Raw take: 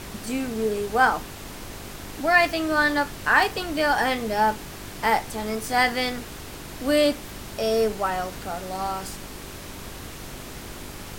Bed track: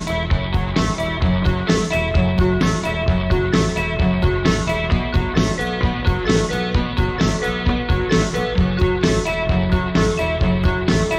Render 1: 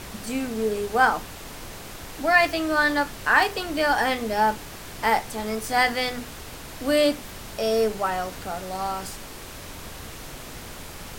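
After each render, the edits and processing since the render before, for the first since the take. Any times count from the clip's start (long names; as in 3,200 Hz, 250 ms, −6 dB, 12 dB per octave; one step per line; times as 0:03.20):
hum removal 50 Hz, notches 8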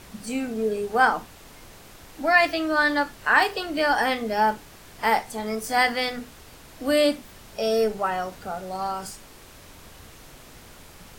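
noise reduction from a noise print 8 dB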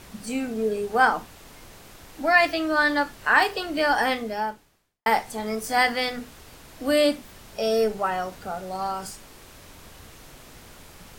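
0:04.13–0:05.06: fade out quadratic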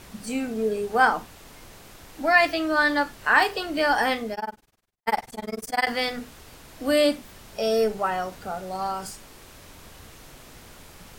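0:04.34–0:05.87: amplitude modulation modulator 20 Hz, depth 100%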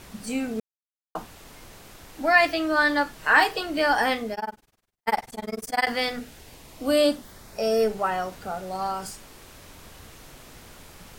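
0:00.60–0:01.15: silence
0:03.15–0:03.61: comb filter 6.3 ms, depth 52%
0:06.19–0:07.79: parametric band 1,000 Hz → 3,900 Hz −12.5 dB 0.25 octaves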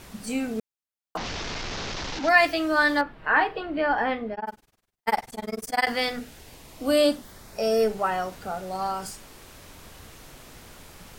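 0:01.17–0:02.29: linear delta modulator 32 kbit/s, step −26 dBFS
0:03.01–0:04.47: high-frequency loss of the air 450 metres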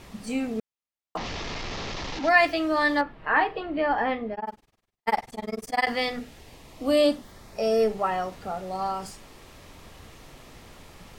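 high-shelf EQ 7,000 Hz −10 dB
notch filter 1,500 Hz, Q 9.5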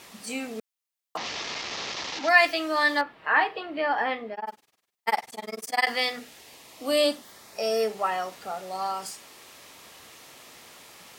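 high-pass filter 270 Hz 6 dB per octave
spectral tilt +2 dB per octave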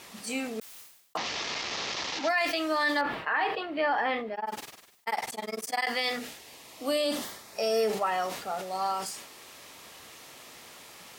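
brickwall limiter −18.5 dBFS, peak gain reduction 11.5 dB
level that may fall only so fast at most 67 dB per second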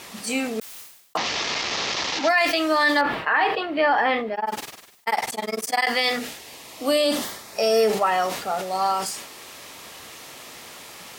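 level +7.5 dB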